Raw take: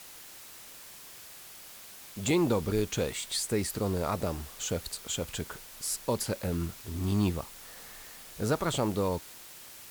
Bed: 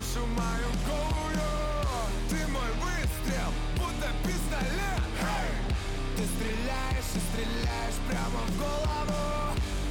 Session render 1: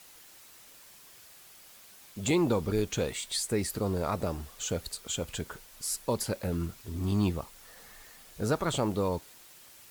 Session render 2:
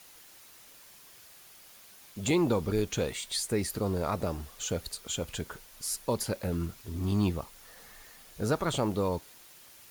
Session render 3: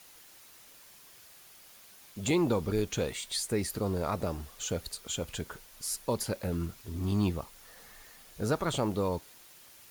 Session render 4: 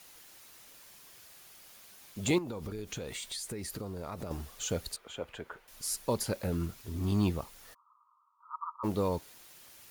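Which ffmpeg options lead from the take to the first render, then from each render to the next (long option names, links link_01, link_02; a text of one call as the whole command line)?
ffmpeg -i in.wav -af "afftdn=noise_reduction=6:noise_floor=-49" out.wav
ffmpeg -i in.wav -af "bandreject=frequency=7800:width=15" out.wav
ffmpeg -i in.wav -af "volume=-1dB" out.wav
ffmpeg -i in.wav -filter_complex "[0:a]asettb=1/sr,asplit=3[link_01][link_02][link_03];[link_01]atrim=end=2.384[link_04];[link_02]atrim=start=2.38:end=4.31,asetpts=PTS-STARTPTS,afade=type=in:duration=0.004:curve=qsin,afade=type=out:start_time=1.926:duration=0.004:curve=qsin,acompressor=threshold=-35dB:ratio=8:attack=3.2:release=140:knee=1:detection=peak[link_05];[link_03]atrim=start=4.306[link_06];[link_04][link_05]acrossfade=duration=0.004:curve1=hsin:curve2=qsin[link_07];[link_07][link_06]acrossfade=duration=0.004:curve1=qsin:curve2=hsin,asettb=1/sr,asplit=3[link_08][link_09][link_10];[link_08]atrim=end=4.964[link_11];[link_09]atrim=start=4.96:end=5.68,asetpts=PTS-STARTPTS,afade=type=in:duration=0.004:curve=qsin,afade=type=out:start_time=0.716:duration=0.004:curve=qsin,acrossover=split=340 2700:gain=0.251 1 0.112[link_12][link_13][link_14];[link_12][link_13][link_14]amix=inputs=3:normalize=0[link_15];[link_10]atrim=start=5.676[link_16];[link_11][link_15]acrossfade=duration=0.004:curve1=hsin:curve2=qsin[link_17];[link_17][link_16]acrossfade=duration=0.004:curve1=qsin:curve2=hsin,asplit=3[link_18][link_19][link_20];[link_18]afade=type=out:start_time=7.73:duration=0.02[link_21];[link_19]asuperpass=centerf=1100:order=12:qfactor=2.9,afade=type=in:start_time=7.73:duration=0.02,afade=type=out:start_time=8.83:duration=0.02[link_22];[link_20]afade=type=in:start_time=8.83:duration=0.02[link_23];[link_21][link_22][link_23]amix=inputs=3:normalize=0" out.wav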